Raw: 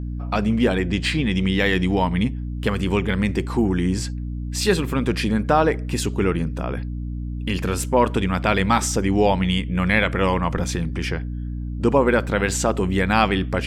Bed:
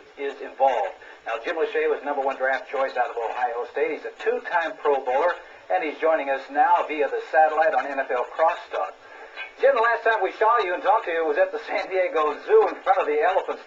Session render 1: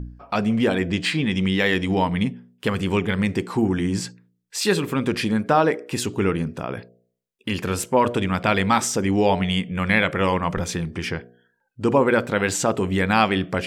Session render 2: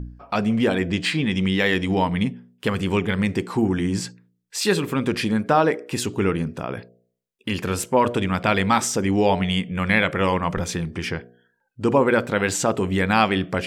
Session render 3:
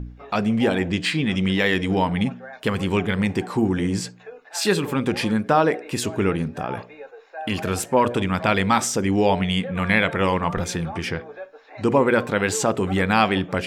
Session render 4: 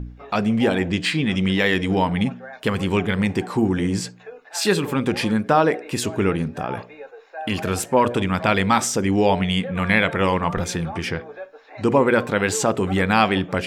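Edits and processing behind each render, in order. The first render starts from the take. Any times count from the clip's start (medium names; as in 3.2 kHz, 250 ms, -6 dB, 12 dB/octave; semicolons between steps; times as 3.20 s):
de-hum 60 Hz, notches 12
no audible change
add bed -16.5 dB
trim +1 dB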